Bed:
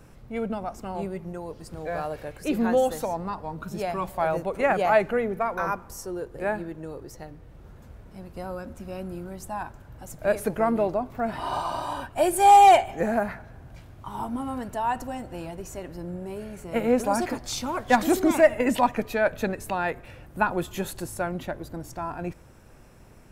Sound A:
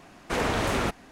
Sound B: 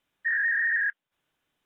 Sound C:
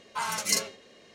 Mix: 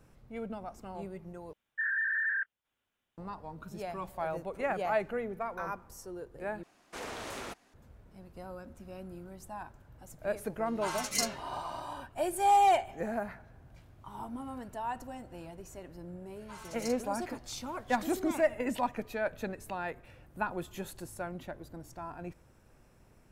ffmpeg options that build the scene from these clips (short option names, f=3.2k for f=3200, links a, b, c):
-filter_complex "[3:a]asplit=2[a][b];[0:a]volume=-10dB[c];[2:a]afreqshift=-60[d];[1:a]bass=f=250:g=-8,treble=f=4k:g=5[e];[c]asplit=3[f][g][h];[f]atrim=end=1.534[i];[d]atrim=end=1.65,asetpts=PTS-STARTPTS,volume=-6dB[j];[g]atrim=start=3.176:end=6.634[k];[e]atrim=end=1.11,asetpts=PTS-STARTPTS,volume=-14dB[l];[h]atrim=start=7.736[m];[a]atrim=end=1.14,asetpts=PTS-STARTPTS,volume=-5.5dB,afade=t=in:d=0.004:c=hsin,afade=t=out:st=1.136:d=0.004:c=hsin,adelay=470106S[n];[b]atrim=end=1.14,asetpts=PTS-STARTPTS,volume=-18dB,afade=t=in:d=0.004:c=hsin,afade=t=out:st=1.136:d=0.004:c=hsin,adelay=16330[o];[i][j]acrossfade=d=0.004:c1=hsin:c2=hsin[p];[p][k]acrossfade=d=0.004:c1=hsin:c2=hsin[q];[q][l]acrossfade=d=0.004:c1=hsin:c2=hsin[r];[r][m]acrossfade=d=0.004:c1=hsin:c2=hsin[s];[s][n][o]amix=inputs=3:normalize=0"